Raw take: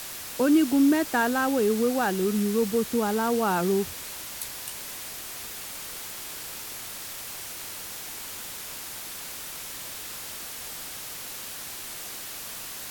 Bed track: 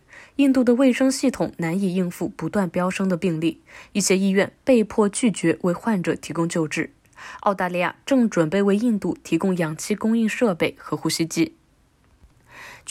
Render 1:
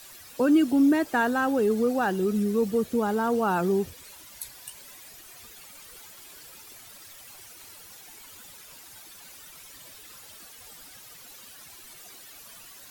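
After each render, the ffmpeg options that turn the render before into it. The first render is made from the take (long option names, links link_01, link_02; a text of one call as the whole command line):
ffmpeg -i in.wav -af "afftdn=noise_reduction=13:noise_floor=-38" out.wav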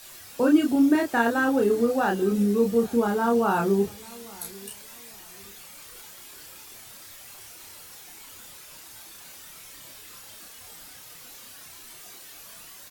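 ffmpeg -i in.wav -filter_complex "[0:a]asplit=2[link_01][link_02];[link_02]adelay=30,volume=-2.5dB[link_03];[link_01][link_03]amix=inputs=2:normalize=0,asplit=2[link_04][link_05];[link_05]adelay=841,lowpass=frequency=2000:poles=1,volume=-22.5dB,asplit=2[link_06][link_07];[link_07]adelay=841,lowpass=frequency=2000:poles=1,volume=0.31[link_08];[link_04][link_06][link_08]amix=inputs=3:normalize=0" out.wav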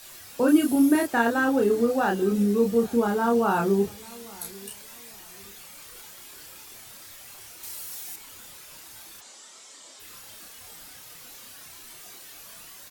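ffmpeg -i in.wav -filter_complex "[0:a]asettb=1/sr,asplit=3[link_01][link_02][link_03];[link_01]atrim=end=0.484[link_04];[link_02]atrim=start=0.48:end=1.07,asetpts=PTS-STARTPTS,afade=type=in:duration=0.004:curve=qsin,afade=type=out:start_time=0.586:duration=0.004:curve=qsin,equalizer=frequency=11000:width_type=o:width=0.53:gain=14[link_05];[link_03]atrim=start=1.066[link_06];[link_04][link_05]acrossfade=duration=0.004:curve1=hsin:curve2=qsin[link_07];[link_07][link_06]acrossfade=duration=0.004:curve1=qsin:curve2=hsin,asettb=1/sr,asplit=3[link_08][link_09][link_10];[link_08]atrim=end=7.634[link_11];[link_09]atrim=start=7.63:end=8.16,asetpts=PTS-STARTPTS,afade=type=in:duration=0.004:curve=qsin,afade=type=out:start_time=0.526:duration=0.004:curve=qsin,highshelf=frequency=5100:gain=10[link_12];[link_10]atrim=start=8.156[link_13];[link_11][link_12]acrossfade=duration=0.004:curve1=hsin:curve2=qsin[link_14];[link_14][link_13]acrossfade=duration=0.004:curve1=qsin:curve2=hsin,asplit=3[link_15][link_16][link_17];[link_15]afade=type=out:start_time=9.2:duration=0.02[link_18];[link_16]highpass=frequency=250:width=0.5412,highpass=frequency=250:width=1.3066,equalizer=frequency=310:width_type=q:width=4:gain=-4,equalizer=frequency=1600:width_type=q:width=4:gain=-5,equalizer=frequency=2500:width_type=q:width=4:gain=-7,equalizer=frequency=7600:width_type=q:width=4:gain=7,lowpass=frequency=7800:width=0.5412,lowpass=frequency=7800:width=1.3066,afade=type=in:start_time=9.2:duration=0.02,afade=type=out:start_time=9.99:duration=0.02[link_19];[link_17]afade=type=in:start_time=9.99:duration=0.02[link_20];[link_18][link_19][link_20]amix=inputs=3:normalize=0" out.wav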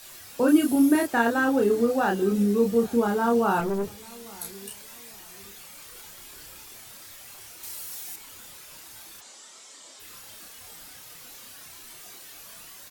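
ffmpeg -i in.wav -filter_complex "[0:a]asettb=1/sr,asplit=3[link_01][link_02][link_03];[link_01]atrim=end=3.604[link_04];[link_02]atrim=start=3.6:end=4.26,asetpts=PTS-STARTPTS,afade=type=in:duration=0.004:curve=qsin,afade=type=out:start_time=0.656:duration=0.004:curve=qsin,aeval=exprs='(tanh(14.1*val(0)+0.35)-tanh(0.35))/14.1':channel_layout=same[link_05];[link_03]atrim=start=4.256[link_06];[link_04][link_05]acrossfade=duration=0.004:curve1=hsin:curve2=qsin[link_07];[link_07][link_06]acrossfade=duration=0.004:curve1=qsin:curve2=hsin,asettb=1/sr,asplit=3[link_08][link_09][link_10];[link_08]atrim=end=6.044[link_11];[link_09]atrim=start=6.04:end=6.67,asetpts=PTS-STARTPTS,afade=type=in:duration=0.004:curve=qsin,afade=type=out:start_time=0.626:duration=0.004:curve=qsin,lowshelf=frequency=95:gain=9[link_12];[link_10]atrim=start=6.666[link_13];[link_11][link_12]acrossfade=duration=0.004:curve1=hsin:curve2=qsin[link_14];[link_14][link_13]acrossfade=duration=0.004:curve1=qsin:curve2=hsin" out.wav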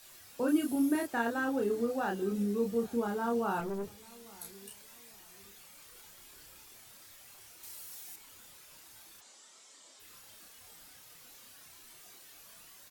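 ffmpeg -i in.wav -af "volume=-9.5dB" out.wav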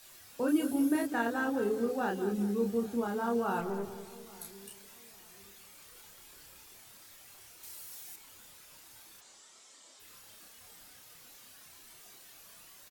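ffmpeg -i in.wav -filter_complex "[0:a]asplit=2[link_01][link_02];[link_02]adelay=200,lowpass=frequency=2000:poles=1,volume=-10.5dB,asplit=2[link_03][link_04];[link_04]adelay=200,lowpass=frequency=2000:poles=1,volume=0.46,asplit=2[link_05][link_06];[link_06]adelay=200,lowpass=frequency=2000:poles=1,volume=0.46,asplit=2[link_07][link_08];[link_08]adelay=200,lowpass=frequency=2000:poles=1,volume=0.46,asplit=2[link_09][link_10];[link_10]adelay=200,lowpass=frequency=2000:poles=1,volume=0.46[link_11];[link_01][link_03][link_05][link_07][link_09][link_11]amix=inputs=6:normalize=0" out.wav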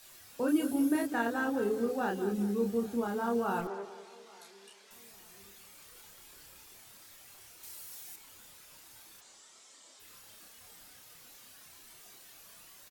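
ffmpeg -i in.wav -filter_complex "[0:a]asettb=1/sr,asplit=3[link_01][link_02][link_03];[link_01]atrim=end=3.674[link_04];[link_02]atrim=start=3.67:end=4.91,asetpts=PTS-STARTPTS,afade=type=in:duration=0.004:curve=qsin,afade=type=out:start_time=1.236:duration=0.004:curve=qsin,highpass=430,lowpass=5700[link_05];[link_03]atrim=start=4.906[link_06];[link_04][link_05]acrossfade=duration=0.004:curve1=hsin:curve2=qsin[link_07];[link_07][link_06]acrossfade=duration=0.004:curve1=qsin:curve2=hsin" out.wav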